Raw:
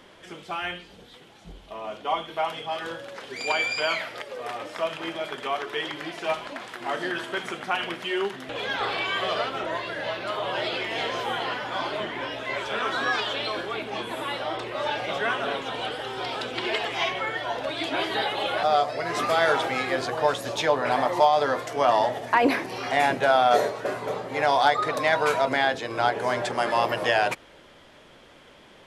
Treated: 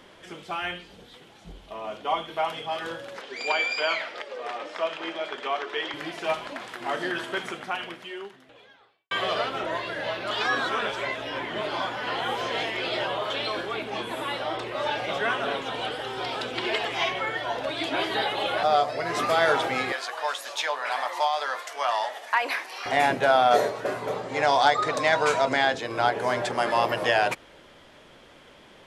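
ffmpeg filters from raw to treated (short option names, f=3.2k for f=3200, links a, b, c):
-filter_complex "[0:a]asettb=1/sr,asplit=3[a][b][c];[a]atrim=end=3.214[d];[b]atrim=start=3.21:end=5.94,asetpts=PTS-STARTPTS,afade=t=in:d=0.004:c=qsin,afade=t=out:st=2.726:d=0.004:c=qsin,highpass=290,lowpass=6.1k[e];[c]atrim=start=5.936[f];[d][e]acrossfade=d=0.004:c1=hsin:c2=qsin[g];[g][f]acrossfade=d=0.004:c1=qsin:c2=hsin,asettb=1/sr,asplit=3[h][i][j];[h]atrim=end=19.924[k];[i]atrim=start=19.92:end=22.86,asetpts=PTS-STARTPTS,afade=t=in:d=0.004:c=qsin,afade=t=out:st=2.936:d=0.004:c=qsin,highpass=990[l];[j]atrim=start=22.856[m];[k][l]acrossfade=d=0.004:c1=hsin:c2=qsin[n];[n][m]acrossfade=d=0.004:c1=qsin:c2=hsin,asettb=1/sr,asplit=3[o][p][q];[o]atrim=end=24.234[r];[p]atrim=start=24.23:end=25.78,asetpts=PTS-STARTPTS,afade=t=in:d=0.004:c=qsin,afade=t=out:st=1.546:d=0.004:c=qsin,lowpass=f=7.5k:t=q:w=1.7[s];[q]atrim=start=25.776[t];[r][s]acrossfade=d=0.004:c1=hsin:c2=qsin[u];[u][t]acrossfade=d=0.004:c1=qsin:c2=hsin,asplit=4[v][w][x][y];[v]atrim=end=9.11,asetpts=PTS-STARTPTS,afade=t=out:st=7.38:d=1.73:c=qua[z];[w]atrim=start=9.11:end=10.312,asetpts=PTS-STARTPTS,afade=t=in:d=0.004:c=hsin[aa];[x]atrim=start=10.308:end=13.302,asetpts=PTS-STARTPTS,areverse[ab];[y]atrim=start=13.298[ac];[z][aa]concat=n=2:v=0:a=1[ad];[ad][ab]acrossfade=d=0.004:c1=hsin:c2=hsin[ae];[ae][ac]acrossfade=d=0.004:c1=hsin:c2=hsin"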